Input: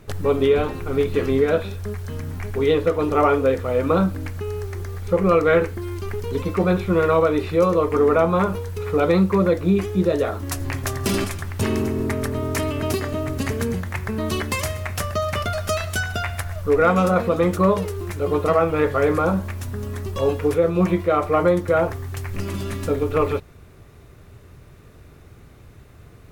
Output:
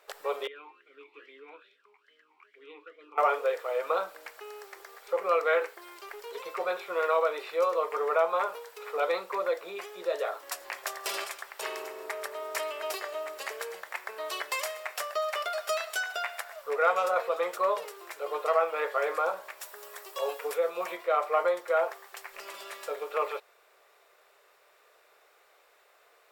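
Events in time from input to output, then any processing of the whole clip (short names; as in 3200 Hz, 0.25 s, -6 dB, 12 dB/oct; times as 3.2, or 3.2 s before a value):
0.47–3.18 vowel sweep i-u 2.4 Hz
19.6–20.97 high shelf 7000 Hz +8.5 dB
whole clip: inverse Chebyshev high-pass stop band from 260 Hz, stop band 40 dB; bell 10000 Hz -6.5 dB 0.21 oct; notch 6300 Hz, Q 13; gain -5.5 dB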